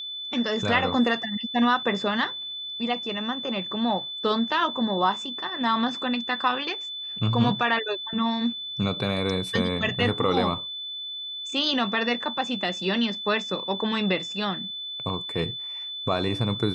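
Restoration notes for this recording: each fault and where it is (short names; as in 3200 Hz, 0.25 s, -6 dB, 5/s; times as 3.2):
tone 3500 Hz -32 dBFS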